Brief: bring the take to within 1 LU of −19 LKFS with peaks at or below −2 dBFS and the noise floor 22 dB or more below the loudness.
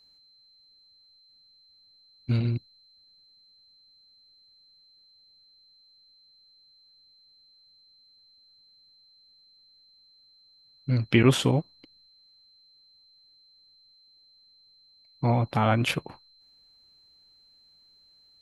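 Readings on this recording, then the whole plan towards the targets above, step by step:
interfering tone 4,100 Hz; level of the tone −57 dBFS; integrated loudness −25.5 LKFS; sample peak −4.5 dBFS; target loudness −19.0 LKFS
→ notch filter 4,100 Hz, Q 30
level +6.5 dB
brickwall limiter −2 dBFS

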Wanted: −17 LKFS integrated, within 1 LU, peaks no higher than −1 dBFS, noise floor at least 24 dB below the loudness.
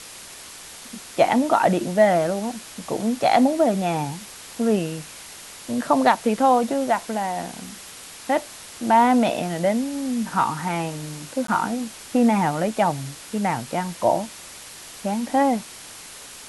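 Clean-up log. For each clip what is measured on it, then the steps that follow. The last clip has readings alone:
number of dropouts 1; longest dropout 13 ms; background noise floor −41 dBFS; target noise floor −46 dBFS; integrated loudness −22.0 LKFS; sample peak −4.0 dBFS; target loudness −17.0 LKFS
→ repair the gap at 0:11.47, 13 ms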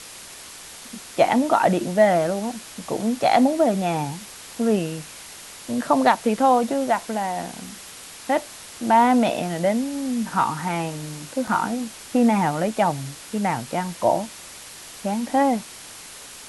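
number of dropouts 0; background noise floor −41 dBFS; target noise floor −46 dBFS
→ noise reduction from a noise print 6 dB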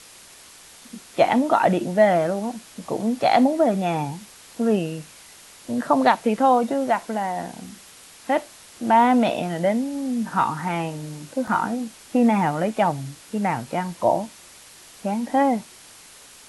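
background noise floor −47 dBFS; integrated loudness −22.0 LKFS; sample peak −4.0 dBFS; target loudness −17.0 LKFS
→ level +5 dB
brickwall limiter −1 dBFS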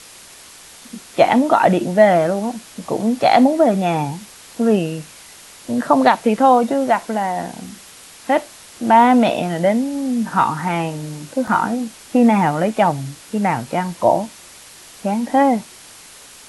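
integrated loudness −17.5 LKFS; sample peak −1.0 dBFS; background noise floor −42 dBFS

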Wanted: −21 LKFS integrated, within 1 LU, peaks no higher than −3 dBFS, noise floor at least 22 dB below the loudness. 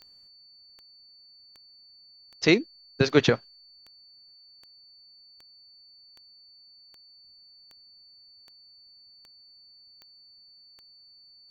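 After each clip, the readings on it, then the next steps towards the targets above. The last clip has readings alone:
number of clicks 15; interfering tone 4,500 Hz; level of the tone −52 dBFS; integrated loudness −24.0 LKFS; sample peak −5.0 dBFS; target loudness −21.0 LKFS
→ click removal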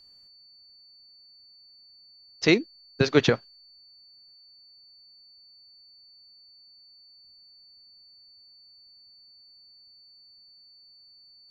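number of clicks 0; interfering tone 4,500 Hz; level of the tone −52 dBFS
→ notch filter 4,500 Hz, Q 30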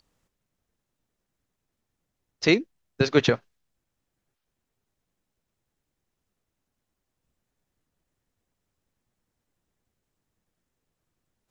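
interfering tone none found; integrated loudness −24.0 LKFS; sample peak −5.0 dBFS; target loudness −21.0 LKFS
→ level +3 dB
brickwall limiter −3 dBFS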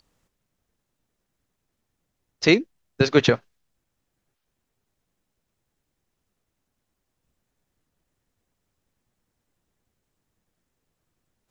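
integrated loudness −21.0 LKFS; sample peak −3.0 dBFS; background noise floor −79 dBFS

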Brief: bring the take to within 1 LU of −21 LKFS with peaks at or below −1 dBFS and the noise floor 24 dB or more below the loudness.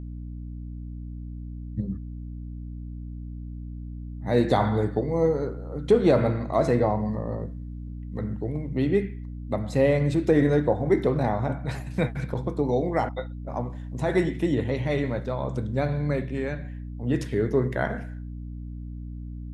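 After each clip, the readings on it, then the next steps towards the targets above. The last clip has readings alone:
mains hum 60 Hz; hum harmonics up to 300 Hz; level of the hum −33 dBFS; integrated loudness −26.0 LKFS; sample peak −7.5 dBFS; target loudness −21.0 LKFS
→ hum removal 60 Hz, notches 5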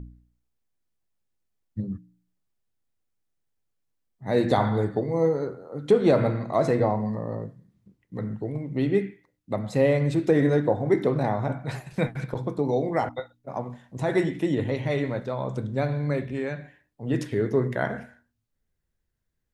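mains hum none found; integrated loudness −26.0 LKFS; sample peak −8.0 dBFS; target loudness −21.0 LKFS
→ level +5 dB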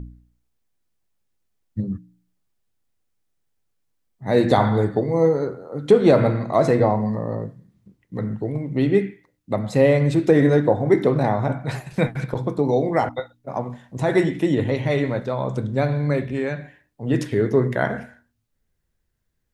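integrated loudness −21.0 LKFS; sample peak −3.0 dBFS; background noise floor −73 dBFS

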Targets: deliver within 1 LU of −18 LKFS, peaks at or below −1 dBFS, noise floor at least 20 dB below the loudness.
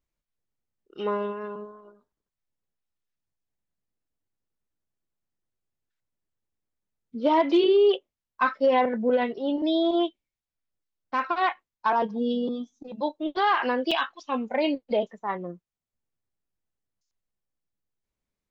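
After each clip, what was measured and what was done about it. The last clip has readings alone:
number of dropouts 1; longest dropout 4.8 ms; integrated loudness −25.5 LKFS; sample peak −12.5 dBFS; target loudness −18.0 LKFS
→ repair the gap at 0:13.91, 4.8 ms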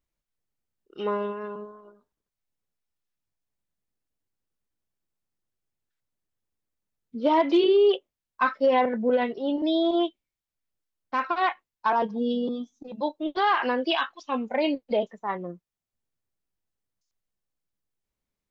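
number of dropouts 0; integrated loudness −25.5 LKFS; sample peak −12.5 dBFS; target loudness −18.0 LKFS
→ level +7.5 dB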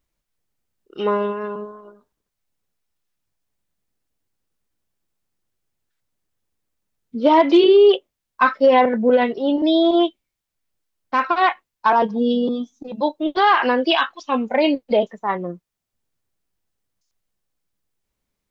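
integrated loudness −18.0 LKFS; sample peak −5.0 dBFS; background noise floor −82 dBFS

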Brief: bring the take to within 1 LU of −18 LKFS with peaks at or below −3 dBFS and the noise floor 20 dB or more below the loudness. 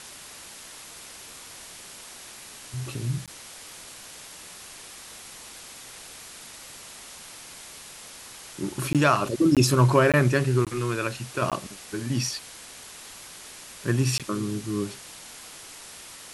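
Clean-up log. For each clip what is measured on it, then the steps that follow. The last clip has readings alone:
number of dropouts 7; longest dropout 17 ms; background noise floor −44 dBFS; target noise floor −45 dBFS; integrated loudness −25.0 LKFS; sample peak −5.5 dBFS; target loudness −18.0 LKFS
→ repair the gap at 0:03.26/0:08.93/0:09.55/0:10.12/0:10.65/0:11.50/0:14.18, 17 ms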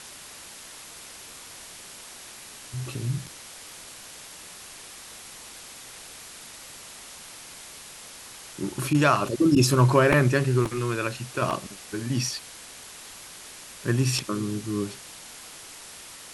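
number of dropouts 0; background noise floor −44 dBFS; target noise floor −45 dBFS
→ broadband denoise 6 dB, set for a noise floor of −44 dBFS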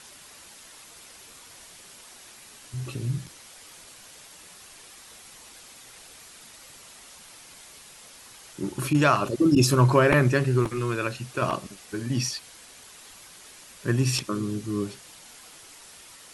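background noise floor −49 dBFS; integrated loudness −24.5 LKFS; sample peak −5.5 dBFS; target loudness −18.0 LKFS
→ level +6.5 dB
brickwall limiter −3 dBFS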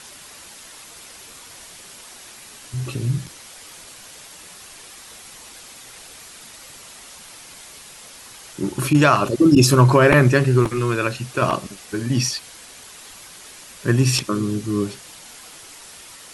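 integrated loudness −18.5 LKFS; sample peak −3.0 dBFS; background noise floor −42 dBFS

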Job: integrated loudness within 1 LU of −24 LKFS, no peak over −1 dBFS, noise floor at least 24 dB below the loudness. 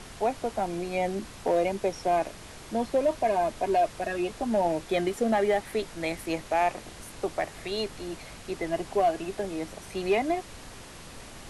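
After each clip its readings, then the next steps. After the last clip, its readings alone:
share of clipped samples 0.3%; peaks flattened at −17.0 dBFS; background noise floor −45 dBFS; target noise floor −53 dBFS; integrated loudness −29.0 LKFS; sample peak −17.0 dBFS; target loudness −24.0 LKFS
→ clipped peaks rebuilt −17 dBFS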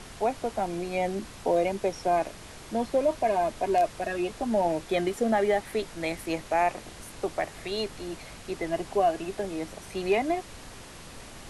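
share of clipped samples 0.0%; background noise floor −45 dBFS; target noise floor −53 dBFS
→ noise reduction from a noise print 8 dB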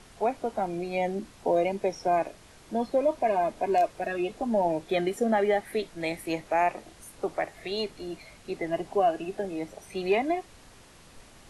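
background noise floor −53 dBFS; integrated loudness −28.5 LKFS; sample peak −13.0 dBFS; target loudness −24.0 LKFS
→ level +4.5 dB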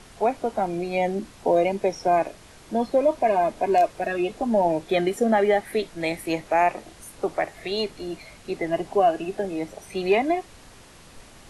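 integrated loudness −24.0 LKFS; sample peak −8.5 dBFS; background noise floor −49 dBFS

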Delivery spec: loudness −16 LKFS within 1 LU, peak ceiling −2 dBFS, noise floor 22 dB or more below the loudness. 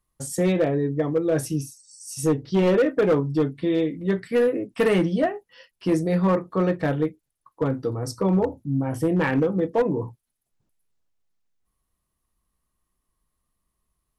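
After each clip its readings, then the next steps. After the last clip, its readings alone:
share of clipped samples 1.2%; peaks flattened at −14.5 dBFS; integrated loudness −23.5 LKFS; sample peak −14.5 dBFS; target loudness −16.0 LKFS
→ clipped peaks rebuilt −14.5 dBFS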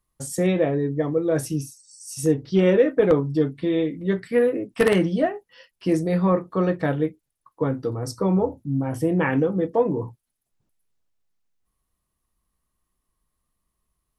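share of clipped samples 0.0%; integrated loudness −23.0 LKFS; sample peak −5.5 dBFS; target loudness −16.0 LKFS
→ level +7 dB
brickwall limiter −2 dBFS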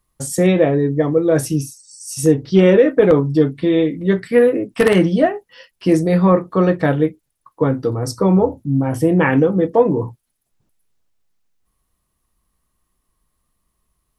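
integrated loudness −16.0 LKFS; sample peak −2.0 dBFS; background noise floor −72 dBFS

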